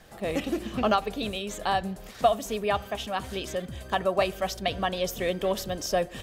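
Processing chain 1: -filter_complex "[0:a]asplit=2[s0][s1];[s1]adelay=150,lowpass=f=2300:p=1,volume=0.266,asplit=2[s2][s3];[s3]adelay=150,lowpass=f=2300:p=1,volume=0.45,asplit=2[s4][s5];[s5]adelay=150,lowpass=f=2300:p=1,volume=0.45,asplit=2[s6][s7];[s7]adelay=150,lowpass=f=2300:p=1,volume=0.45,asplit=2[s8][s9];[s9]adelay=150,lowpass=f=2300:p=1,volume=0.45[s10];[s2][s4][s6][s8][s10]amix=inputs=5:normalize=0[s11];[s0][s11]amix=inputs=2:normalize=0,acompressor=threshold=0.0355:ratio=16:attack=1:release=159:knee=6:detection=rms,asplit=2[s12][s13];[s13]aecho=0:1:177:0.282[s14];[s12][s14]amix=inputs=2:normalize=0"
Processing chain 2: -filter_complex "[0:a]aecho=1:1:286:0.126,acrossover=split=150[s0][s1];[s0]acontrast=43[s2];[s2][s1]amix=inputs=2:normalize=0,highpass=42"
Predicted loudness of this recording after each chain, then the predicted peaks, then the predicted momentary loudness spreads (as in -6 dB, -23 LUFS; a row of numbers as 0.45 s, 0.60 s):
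-36.5 LUFS, -28.5 LUFS; -24.0 dBFS, -9.0 dBFS; 2 LU, 6 LU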